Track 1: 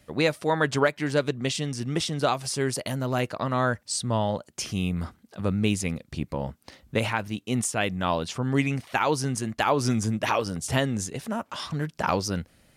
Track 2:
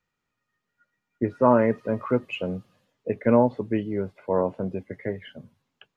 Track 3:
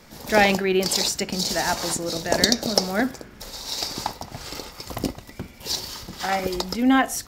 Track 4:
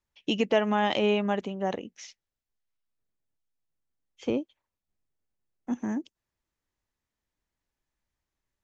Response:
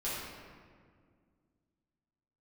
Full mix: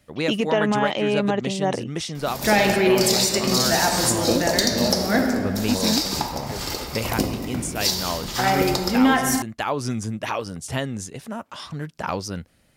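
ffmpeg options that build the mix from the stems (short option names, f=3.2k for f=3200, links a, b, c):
-filter_complex "[0:a]volume=-9dB[a];[1:a]adelay=1450,volume=-13.5dB[b];[2:a]highshelf=f=7.8k:g=5.5,adelay=2150,volume=-6dB,asplit=2[c][d];[d]volume=-5dB[e];[3:a]alimiter=limit=-18.5dB:level=0:latency=1:release=71,volume=0dB[f];[4:a]atrim=start_sample=2205[g];[e][g]afir=irnorm=-1:irlink=0[h];[a][b][c][f][h]amix=inputs=5:normalize=0,acontrast=82,alimiter=limit=-8.5dB:level=0:latency=1:release=399"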